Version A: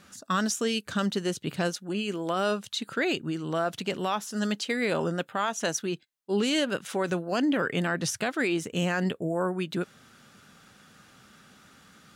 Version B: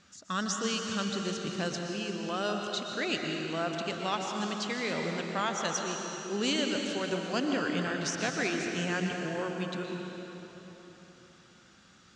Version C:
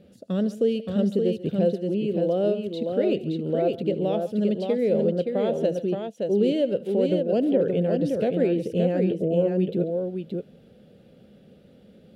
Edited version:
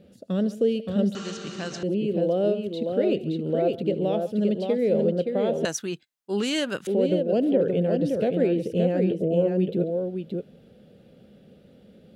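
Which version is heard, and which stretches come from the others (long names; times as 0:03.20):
C
0:01.15–0:01.83: punch in from B
0:05.65–0:06.87: punch in from A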